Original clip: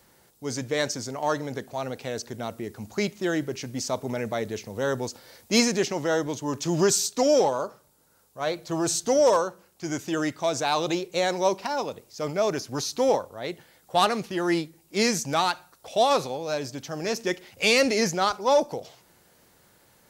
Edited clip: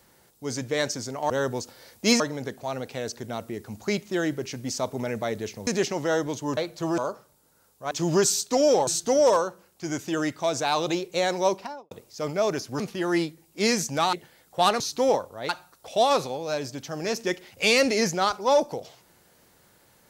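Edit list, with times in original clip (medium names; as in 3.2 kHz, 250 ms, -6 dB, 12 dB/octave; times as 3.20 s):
4.77–5.67 s: move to 1.30 s
6.57–7.53 s: swap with 8.46–8.87 s
11.49–11.91 s: studio fade out
12.80–13.49 s: swap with 14.16–15.49 s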